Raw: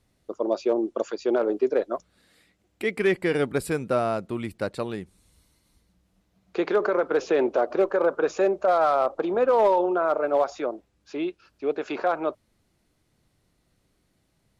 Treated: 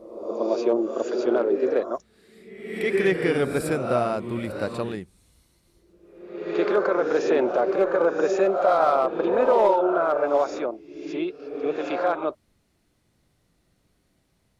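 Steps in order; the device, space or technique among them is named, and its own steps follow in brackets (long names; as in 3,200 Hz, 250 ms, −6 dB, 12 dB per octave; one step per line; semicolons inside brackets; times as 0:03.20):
reverse reverb (reversed playback; convolution reverb RT60 1.0 s, pre-delay 23 ms, DRR 4 dB; reversed playback)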